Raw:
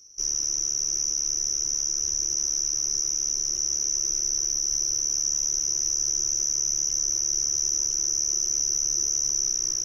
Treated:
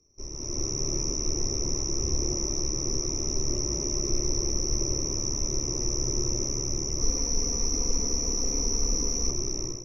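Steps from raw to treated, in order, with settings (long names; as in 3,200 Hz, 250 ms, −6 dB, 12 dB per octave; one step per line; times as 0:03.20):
0:07.01–0:09.31: comb filter 4.2 ms, depth 99%
automatic gain control gain up to 14.5 dB
moving average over 28 samples
level +5 dB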